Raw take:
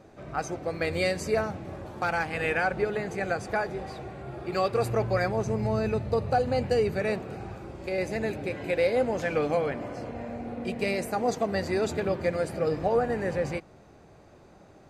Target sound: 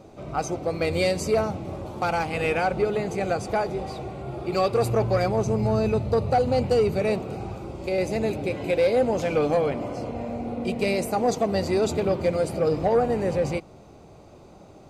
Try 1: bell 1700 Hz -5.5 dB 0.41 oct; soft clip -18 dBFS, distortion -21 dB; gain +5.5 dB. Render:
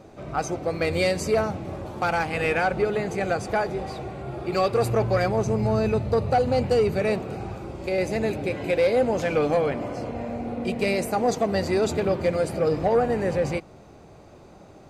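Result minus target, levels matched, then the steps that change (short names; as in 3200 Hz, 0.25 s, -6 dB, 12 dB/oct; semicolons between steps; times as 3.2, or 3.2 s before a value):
2000 Hz band +2.5 dB
change: bell 1700 Hz -13 dB 0.41 oct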